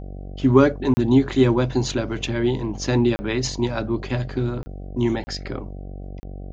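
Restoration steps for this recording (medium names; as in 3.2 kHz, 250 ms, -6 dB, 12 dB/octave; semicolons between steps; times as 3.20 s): de-hum 47.5 Hz, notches 16; interpolate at 0.94/3.16/4.63/5.24/6.20 s, 30 ms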